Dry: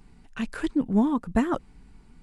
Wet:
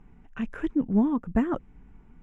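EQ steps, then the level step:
dynamic equaliser 940 Hz, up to −4 dB, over −41 dBFS, Q 0.78
moving average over 10 samples
0.0 dB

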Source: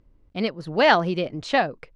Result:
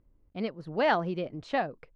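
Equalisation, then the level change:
high-shelf EQ 2,700 Hz −10 dB
−7.0 dB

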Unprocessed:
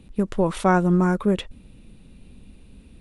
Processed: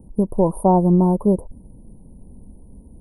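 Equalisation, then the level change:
Chebyshev band-stop filter 970–9,500 Hz, order 5
+4.5 dB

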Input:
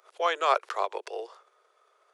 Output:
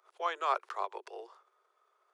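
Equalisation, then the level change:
Chebyshev high-pass with heavy ripple 260 Hz, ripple 6 dB
−5.0 dB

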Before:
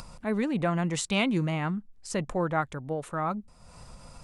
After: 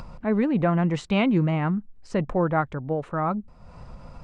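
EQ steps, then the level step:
head-to-tape spacing loss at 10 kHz 28 dB
notch filter 3,500 Hz, Q 25
+6.5 dB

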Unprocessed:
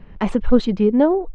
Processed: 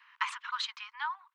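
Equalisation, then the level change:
Butterworth high-pass 970 Hz 96 dB per octave
0.0 dB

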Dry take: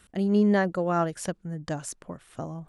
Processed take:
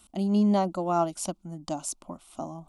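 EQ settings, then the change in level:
low-shelf EQ 400 Hz −3.5 dB
phaser with its sweep stopped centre 460 Hz, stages 6
+4.0 dB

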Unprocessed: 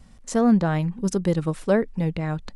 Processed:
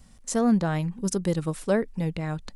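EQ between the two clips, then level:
high-shelf EQ 5,700 Hz +10.5 dB
−3.5 dB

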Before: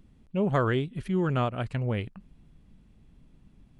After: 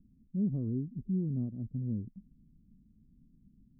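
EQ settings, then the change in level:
transistor ladder low-pass 280 Hz, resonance 50%
+1.0 dB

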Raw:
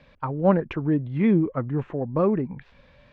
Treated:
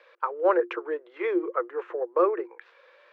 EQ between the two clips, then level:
Chebyshev high-pass with heavy ripple 340 Hz, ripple 9 dB
+6.0 dB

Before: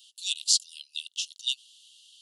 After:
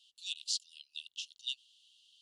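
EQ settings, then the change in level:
spectral tilt −2.5 dB per octave
high-shelf EQ 7,600 Hz −10.5 dB
−3.0 dB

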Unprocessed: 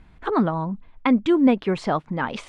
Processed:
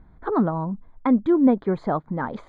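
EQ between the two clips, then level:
moving average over 16 samples
0.0 dB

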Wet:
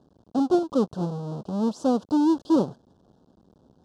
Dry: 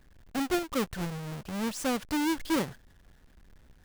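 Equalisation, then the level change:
band-pass filter 190–3,400 Hz
Butterworth band-reject 2,100 Hz, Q 0.6
low-shelf EQ 490 Hz +4.5 dB
+6.0 dB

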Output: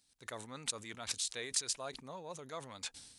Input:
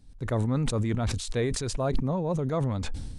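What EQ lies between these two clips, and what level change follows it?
first difference
high-shelf EQ 7,600 Hz −10 dB
+6.0 dB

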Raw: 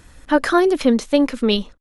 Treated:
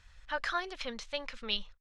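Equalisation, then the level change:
high-frequency loss of the air 180 metres
guitar amp tone stack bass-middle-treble 10-0-10
high-shelf EQ 6,700 Hz +7.5 dB
−4.5 dB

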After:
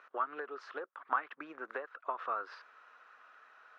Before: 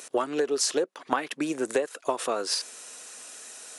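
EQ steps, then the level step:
resonant band-pass 1,300 Hz, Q 3.7
high-frequency loss of the air 290 metres
+2.5 dB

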